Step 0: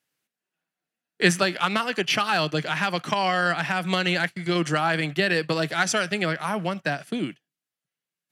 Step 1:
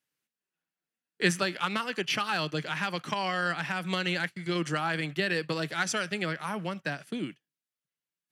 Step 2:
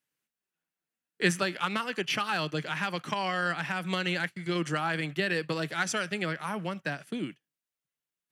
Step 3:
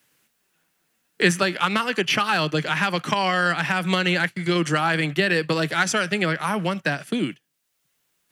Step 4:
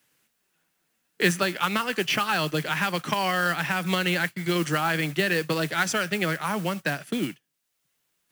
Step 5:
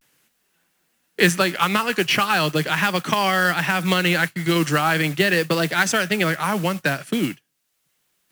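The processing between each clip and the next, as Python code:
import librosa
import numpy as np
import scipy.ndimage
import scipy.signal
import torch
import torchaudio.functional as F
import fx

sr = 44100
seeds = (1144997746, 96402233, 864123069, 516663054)

y1 = fx.peak_eq(x, sr, hz=690.0, db=-5.5, octaves=0.32)
y1 = F.gain(torch.from_numpy(y1), -6.0).numpy()
y2 = fx.peak_eq(y1, sr, hz=4600.0, db=-2.5, octaves=0.77)
y3 = fx.band_squash(y2, sr, depth_pct=40)
y3 = F.gain(torch.from_numpy(y3), 8.5).numpy()
y4 = fx.mod_noise(y3, sr, seeds[0], snr_db=17)
y4 = F.gain(torch.from_numpy(y4), -3.5).numpy()
y5 = fx.vibrato(y4, sr, rate_hz=0.39, depth_cents=56.0)
y5 = F.gain(torch.from_numpy(y5), 5.5).numpy()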